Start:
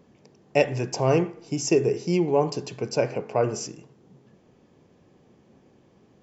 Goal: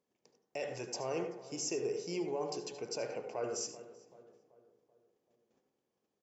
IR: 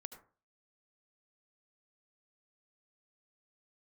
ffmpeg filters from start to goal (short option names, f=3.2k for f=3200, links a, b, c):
-filter_complex "[0:a]agate=range=-14dB:threshold=-54dB:ratio=16:detection=peak,bass=f=250:g=-12,treble=f=4k:g=7,alimiter=limit=-17.5dB:level=0:latency=1:release=14,asplit=2[a][b];[b]adelay=384,lowpass=f=1.5k:p=1,volume=-15.5dB,asplit=2[c][d];[d]adelay=384,lowpass=f=1.5k:p=1,volume=0.51,asplit=2[e][f];[f]adelay=384,lowpass=f=1.5k:p=1,volume=0.51,asplit=2[g][h];[h]adelay=384,lowpass=f=1.5k:p=1,volume=0.51,asplit=2[i][j];[j]adelay=384,lowpass=f=1.5k:p=1,volume=0.51[k];[a][c][e][g][i][k]amix=inputs=6:normalize=0[l];[1:a]atrim=start_sample=2205[m];[l][m]afir=irnorm=-1:irlink=0,volume=-5.5dB"